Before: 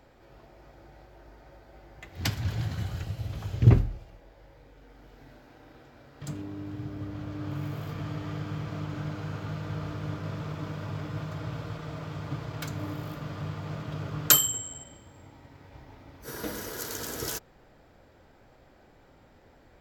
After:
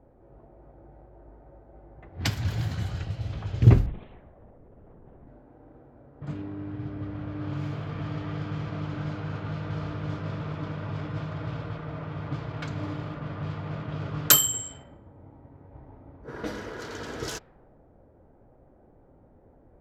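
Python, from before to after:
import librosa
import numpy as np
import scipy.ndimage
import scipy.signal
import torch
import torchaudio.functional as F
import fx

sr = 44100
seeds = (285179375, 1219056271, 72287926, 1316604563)

y = fx.env_lowpass(x, sr, base_hz=600.0, full_db=-26.5)
y = fx.lpc_vocoder(y, sr, seeds[0], excitation='whisper', order=8, at=(3.86, 5.27))
y = y * 10.0 ** (2.0 / 20.0)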